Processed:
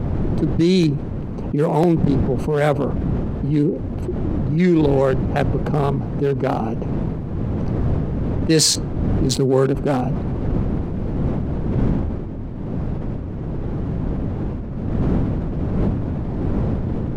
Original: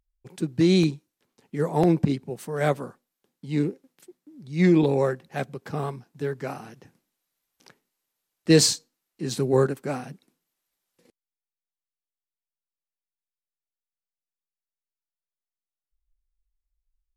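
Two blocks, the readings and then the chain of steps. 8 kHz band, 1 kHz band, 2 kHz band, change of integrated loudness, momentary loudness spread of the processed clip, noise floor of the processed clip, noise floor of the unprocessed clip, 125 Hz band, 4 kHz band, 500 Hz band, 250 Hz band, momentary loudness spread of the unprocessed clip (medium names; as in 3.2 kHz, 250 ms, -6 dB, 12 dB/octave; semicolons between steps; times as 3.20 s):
+5.5 dB, +7.5 dB, +3.5 dB, +3.5 dB, 10 LU, -27 dBFS, under -85 dBFS, +10.5 dB, +5.0 dB, +6.0 dB, +7.0 dB, 16 LU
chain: local Wiener filter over 25 samples; wind noise 200 Hz -37 dBFS; level flattener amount 70%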